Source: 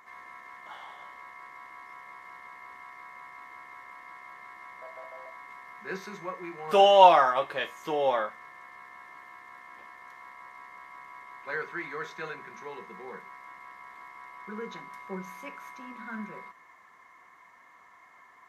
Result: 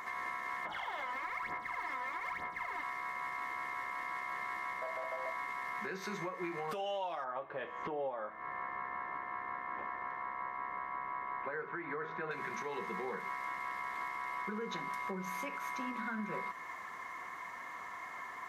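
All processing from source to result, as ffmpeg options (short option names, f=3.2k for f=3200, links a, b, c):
-filter_complex "[0:a]asettb=1/sr,asplit=3[a][b][c];[a]atrim=end=0.654[d];[b]atrim=start=0.65:end=2.83,asetpts=PTS-STARTPTS,afade=t=in:d=0.004:c=qsin,afade=t=out:st=2.176:d=0.004:c=qsin,highshelf=f=6.1k:g=-8.5,aphaser=in_gain=1:out_gain=1:delay=4:decay=0.72:speed=1.1:type=sinusoidal,bandreject=f=1.1k:w=15[e];[c]atrim=start=2.826[f];[d][e]acrossfade=d=0.004:c1=hsin:c2=qsin[g];[g][f]acrossfade=d=0.004:c1=qsin:c2=hsin,asettb=1/sr,asplit=3[h][i][j];[h]atrim=end=7.244[k];[i]atrim=start=7.24:end=12.31,asetpts=PTS-STARTPTS,afade=t=in:d=0.004:c=qsin,afade=t=out:st=5.066:d=0.004:c=qsin,lowpass=1.5k,bandreject=f=163.2:t=h:w=4,bandreject=f=326.4:t=h:w=4,bandreject=f=489.6:t=h:w=4,bandreject=f=652.8:t=h:w=4,bandreject=f=816:t=h:w=4,bandreject=f=979.2:t=h:w=4,bandreject=f=1.1424k:t=h:w=4,bandreject=f=1.3056k:t=h:w=4,bandreject=f=1.4688k:t=h:w=4,bandreject=f=1.632k:t=h:w=4,bandreject=f=1.7952k:t=h:w=4,bandreject=f=1.9584k:t=h:w=4,bandreject=f=2.1216k:t=h:w=4,bandreject=f=2.2848k:t=h:w=4,bandreject=f=2.448k:t=h:w=4,bandreject=f=2.6112k:t=h:w=4,bandreject=f=2.7744k:t=h:w=4,bandreject=f=2.9376k:t=h:w=4,bandreject=f=3.1008k:t=h:w=4,bandreject=f=3.264k:t=h:w=4,bandreject=f=3.4272k:t=h:w=4,bandreject=f=3.5904k:t=h:w=4,bandreject=f=3.7536k:t=h:w=4,bandreject=f=3.9168k:t=h:w=4,bandreject=f=4.08k:t=h:w=4,bandreject=f=4.2432k:t=h:w=4,bandreject=f=4.4064k:t=h:w=4,bandreject=f=4.5696k:t=h:w=4,bandreject=f=4.7328k:t=h:w=4,bandreject=f=4.896k:t=h:w=4,bandreject=f=5.0592k:t=h:w=4,bandreject=f=5.2224k:t=h:w=4,bandreject=f=5.3856k:t=h:w=4,bandreject=f=5.5488k:t=h:w=4[l];[j]atrim=start=12.306[m];[k][l]acrossfade=d=0.004:c1=hsin:c2=qsin[n];[n][m]acrossfade=d=0.004:c1=qsin:c2=hsin,acompressor=threshold=-41dB:ratio=16,alimiter=level_in=16.5dB:limit=-24dB:level=0:latency=1:release=243,volume=-16.5dB,volume=10.5dB"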